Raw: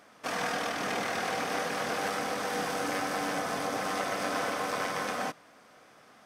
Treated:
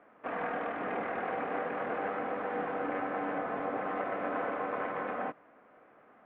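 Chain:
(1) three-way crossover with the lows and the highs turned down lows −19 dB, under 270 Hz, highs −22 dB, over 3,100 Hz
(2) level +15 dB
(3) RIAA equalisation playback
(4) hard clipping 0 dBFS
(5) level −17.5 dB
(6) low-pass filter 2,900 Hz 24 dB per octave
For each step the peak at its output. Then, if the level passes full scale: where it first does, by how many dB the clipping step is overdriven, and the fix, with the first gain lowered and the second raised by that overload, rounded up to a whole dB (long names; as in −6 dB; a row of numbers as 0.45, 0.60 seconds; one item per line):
−20.0, −5.0, −4.5, −4.5, −22.0, −22.0 dBFS
no step passes full scale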